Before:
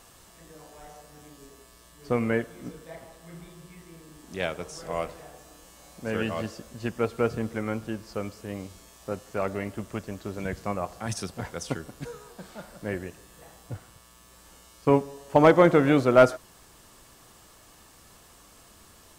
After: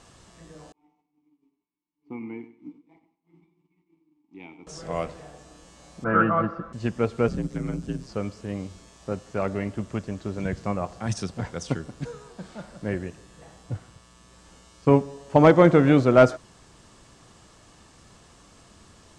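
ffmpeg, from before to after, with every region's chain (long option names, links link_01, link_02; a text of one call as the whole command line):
ffmpeg -i in.wav -filter_complex "[0:a]asettb=1/sr,asplit=3[link_01][link_02][link_03];[link_01]atrim=end=0.724[link_04];[link_02]atrim=start=0.72:end=4.67,asetpts=PTS-STARTPTS,afade=type=in:duration=0.004:curve=qsin,afade=type=out:start_time=3.946:duration=0.004:curve=qsin,agate=range=-33dB:threshold=-40dB:ratio=3:release=100:detection=peak,asplit=3[link_05][link_06][link_07];[link_05]bandpass=frequency=300:width_type=q:width=8,volume=0dB[link_08];[link_06]bandpass=frequency=870:width_type=q:width=8,volume=-6dB[link_09];[link_07]bandpass=frequency=2240:width_type=q:width=8,volume=-9dB[link_10];[link_08][link_09][link_10]amix=inputs=3:normalize=0,aecho=1:1:95|190|285:0.224|0.056|0.014,atrim=end_sample=174195[link_11];[link_03]atrim=start=4.666[link_12];[link_04][link_11]acrossfade=duration=0.004:curve1=hsin:curve2=qsin[link_13];[link_13][link_12]acrossfade=duration=0.004:curve1=qsin:curve2=hsin,asettb=1/sr,asplit=3[link_14][link_15][link_16];[link_14]atrim=end=6.044[link_17];[link_15]atrim=start=6.04:end=6.73,asetpts=PTS-STARTPTS,afade=type=in:duration=0.004:curve=qsin,afade=type=out:start_time=0.686:duration=0.004:curve=qsin,lowpass=frequency=1300:width_type=q:width=11,aecho=1:1:6:0.91,atrim=end_sample=30429[link_18];[link_16]atrim=start=6.726[link_19];[link_17][link_18]acrossfade=duration=0.004:curve1=hsin:curve2=qsin[link_20];[link_20][link_19]acrossfade=duration=0.004:curve1=qsin:curve2=hsin,asettb=1/sr,asplit=3[link_21][link_22][link_23];[link_21]atrim=end=7.284[link_24];[link_22]atrim=start=7.28:end=8.09,asetpts=PTS-STARTPTS,afade=type=in:duration=0.004:curve=qsin,afade=type=out:start_time=0.806:duration=0.004:curve=qsin,bass=frequency=250:gain=9,treble=frequency=4000:gain=14,aeval=exprs='val(0)*sin(2*PI*65*n/s)':channel_layout=same,acrossover=split=180|420|4100[link_25][link_26][link_27][link_28];[link_25]acompressor=threshold=-38dB:ratio=3[link_29];[link_26]acompressor=threshold=-35dB:ratio=3[link_30];[link_27]acompressor=threshold=-42dB:ratio=3[link_31];[link_28]acompressor=threshold=-55dB:ratio=3[link_32];[link_29][link_30][link_31][link_32]amix=inputs=4:normalize=0[link_33];[link_23]atrim=start=8.086[link_34];[link_24][link_33]acrossfade=duration=0.004:curve1=hsin:curve2=qsin[link_35];[link_35][link_34]acrossfade=duration=0.004:curve1=qsin:curve2=hsin,lowpass=frequency=8200:width=0.5412,lowpass=frequency=8200:width=1.3066,equalizer=frequency=140:width=0.53:gain=6" out.wav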